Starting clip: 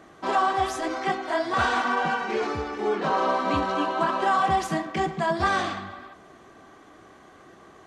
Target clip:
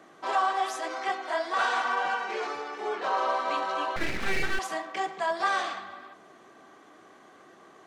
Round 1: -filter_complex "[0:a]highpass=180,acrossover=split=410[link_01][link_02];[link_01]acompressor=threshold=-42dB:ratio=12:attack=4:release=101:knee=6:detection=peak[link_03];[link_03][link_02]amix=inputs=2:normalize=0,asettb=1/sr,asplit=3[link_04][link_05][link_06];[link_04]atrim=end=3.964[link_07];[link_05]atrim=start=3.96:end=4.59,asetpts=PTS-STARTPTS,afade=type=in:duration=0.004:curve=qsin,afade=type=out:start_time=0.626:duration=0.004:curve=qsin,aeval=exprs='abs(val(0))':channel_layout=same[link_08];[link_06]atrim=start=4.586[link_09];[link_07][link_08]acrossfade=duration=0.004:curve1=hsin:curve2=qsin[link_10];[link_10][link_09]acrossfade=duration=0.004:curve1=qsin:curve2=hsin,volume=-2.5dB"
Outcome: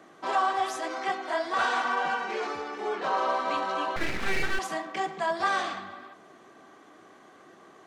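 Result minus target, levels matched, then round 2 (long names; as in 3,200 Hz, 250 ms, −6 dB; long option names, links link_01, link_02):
downward compressor: peak gain reduction −10.5 dB
-filter_complex "[0:a]highpass=180,acrossover=split=410[link_01][link_02];[link_01]acompressor=threshold=-53.5dB:ratio=12:attack=4:release=101:knee=6:detection=peak[link_03];[link_03][link_02]amix=inputs=2:normalize=0,asettb=1/sr,asplit=3[link_04][link_05][link_06];[link_04]atrim=end=3.964[link_07];[link_05]atrim=start=3.96:end=4.59,asetpts=PTS-STARTPTS,afade=type=in:duration=0.004:curve=qsin,afade=type=out:start_time=0.626:duration=0.004:curve=qsin,aeval=exprs='abs(val(0))':channel_layout=same[link_08];[link_06]atrim=start=4.586[link_09];[link_07][link_08]acrossfade=duration=0.004:curve1=hsin:curve2=qsin[link_10];[link_10][link_09]acrossfade=duration=0.004:curve1=qsin:curve2=hsin,volume=-2.5dB"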